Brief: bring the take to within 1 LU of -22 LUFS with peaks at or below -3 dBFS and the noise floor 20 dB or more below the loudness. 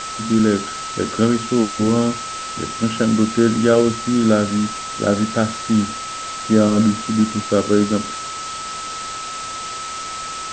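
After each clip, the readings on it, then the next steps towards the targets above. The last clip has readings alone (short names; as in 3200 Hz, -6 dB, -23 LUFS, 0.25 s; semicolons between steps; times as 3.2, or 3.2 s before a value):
steady tone 1300 Hz; tone level -28 dBFS; noise floor -29 dBFS; noise floor target -40 dBFS; loudness -19.5 LUFS; peak -3.0 dBFS; loudness target -22.0 LUFS
-> notch 1300 Hz, Q 30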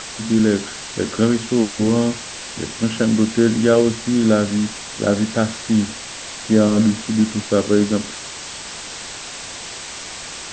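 steady tone none; noise floor -33 dBFS; noise floor target -40 dBFS
-> denoiser 7 dB, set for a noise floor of -33 dBFS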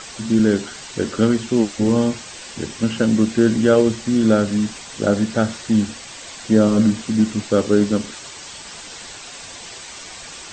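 noise floor -37 dBFS; noise floor target -39 dBFS
-> denoiser 6 dB, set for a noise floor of -37 dBFS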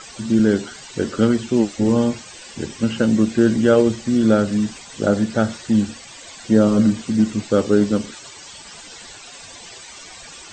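noise floor -40 dBFS; loudness -18.5 LUFS; peak -2.5 dBFS; loudness target -22.0 LUFS
-> gain -3.5 dB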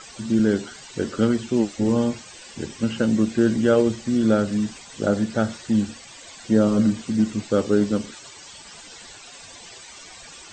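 loudness -22.0 LUFS; peak -6.0 dBFS; noise floor -43 dBFS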